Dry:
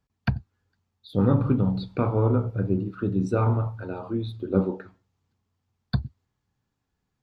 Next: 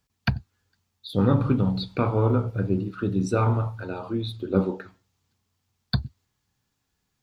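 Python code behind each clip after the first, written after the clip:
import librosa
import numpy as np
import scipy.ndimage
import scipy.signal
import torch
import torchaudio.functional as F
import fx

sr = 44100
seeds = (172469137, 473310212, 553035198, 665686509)

y = fx.high_shelf(x, sr, hz=2100.0, db=11.0)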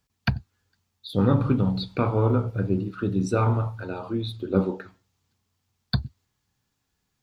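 y = x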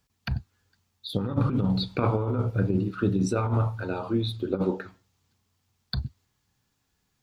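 y = fx.over_compress(x, sr, threshold_db=-23.0, ratio=-0.5)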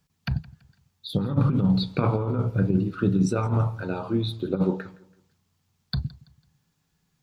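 y = fx.peak_eq(x, sr, hz=160.0, db=13.5, octaves=0.32)
y = fx.echo_feedback(y, sr, ms=166, feedback_pct=35, wet_db=-21.5)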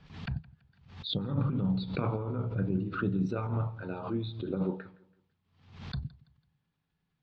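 y = scipy.signal.sosfilt(scipy.signal.butter(4, 3800.0, 'lowpass', fs=sr, output='sos'), x)
y = fx.pre_swell(y, sr, db_per_s=90.0)
y = F.gain(torch.from_numpy(y), -8.5).numpy()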